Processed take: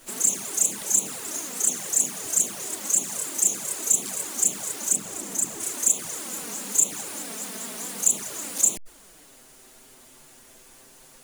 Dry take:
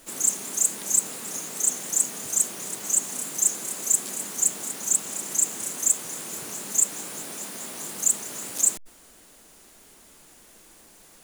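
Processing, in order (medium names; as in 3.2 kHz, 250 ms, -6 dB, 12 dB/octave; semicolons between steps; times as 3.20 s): 4.94–5.61 s: tilt shelf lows +4 dB, about 730 Hz; touch-sensitive flanger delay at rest 8.6 ms, full sweep at -18.5 dBFS; trim +4.5 dB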